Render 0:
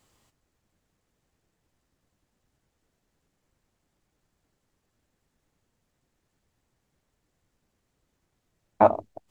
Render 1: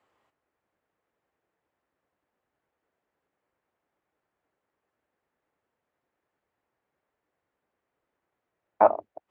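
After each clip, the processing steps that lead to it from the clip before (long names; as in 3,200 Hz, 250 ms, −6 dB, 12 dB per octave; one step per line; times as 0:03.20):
high-pass filter 56 Hz
three-way crossover with the lows and the highs turned down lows −16 dB, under 350 Hz, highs −21 dB, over 2,500 Hz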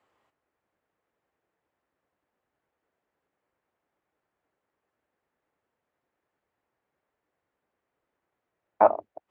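no processing that can be heard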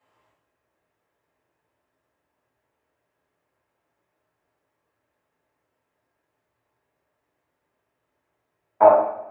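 coupled-rooms reverb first 0.65 s, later 2 s, from −24 dB, DRR −8.5 dB
level −3.5 dB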